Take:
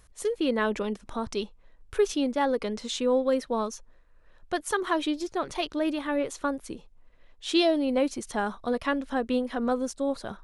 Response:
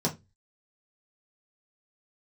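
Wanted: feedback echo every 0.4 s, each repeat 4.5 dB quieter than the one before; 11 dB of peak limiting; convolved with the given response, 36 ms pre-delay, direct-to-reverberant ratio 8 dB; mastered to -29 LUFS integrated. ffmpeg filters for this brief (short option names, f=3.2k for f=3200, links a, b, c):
-filter_complex "[0:a]alimiter=limit=-22dB:level=0:latency=1,aecho=1:1:400|800|1200|1600|2000|2400|2800|3200|3600:0.596|0.357|0.214|0.129|0.0772|0.0463|0.0278|0.0167|0.01,asplit=2[a][b];[1:a]atrim=start_sample=2205,adelay=36[c];[b][c]afir=irnorm=-1:irlink=0,volume=-16.5dB[d];[a][d]amix=inputs=2:normalize=0"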